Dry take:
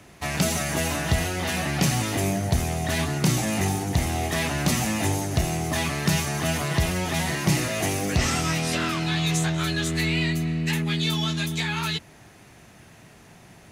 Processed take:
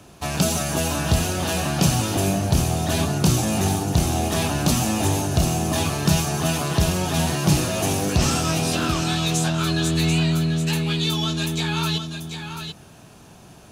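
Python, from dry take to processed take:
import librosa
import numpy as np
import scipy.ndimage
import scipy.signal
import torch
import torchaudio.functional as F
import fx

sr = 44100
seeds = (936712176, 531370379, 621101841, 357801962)

y = fx.peak_eq(x, sr, hz=2000.0, db=-15.0, octaves=0.3)
y = y + 10.0 ** (-7.5 / 20.0) * np.pad(y, (int(738 * sr / 1000.0), 0))[:len(y)]
y = F.gain(torch.from_numpy(y), 3.0).numpy()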